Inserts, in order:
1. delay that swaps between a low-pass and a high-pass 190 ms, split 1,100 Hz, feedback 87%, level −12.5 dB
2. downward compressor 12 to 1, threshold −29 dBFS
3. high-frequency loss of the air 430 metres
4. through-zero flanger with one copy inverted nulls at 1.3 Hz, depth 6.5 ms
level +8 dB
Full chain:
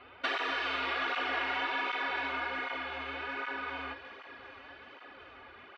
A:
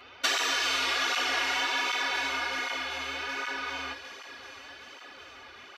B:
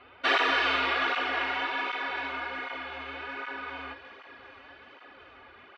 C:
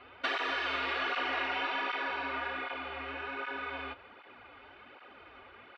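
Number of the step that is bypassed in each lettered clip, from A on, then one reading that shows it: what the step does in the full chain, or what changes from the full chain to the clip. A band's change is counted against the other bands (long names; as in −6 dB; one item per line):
3, 4 kHz band +8.0 dB
2, average gain reduction 1.5 dB
1, change in momentary loudness spread +2 LU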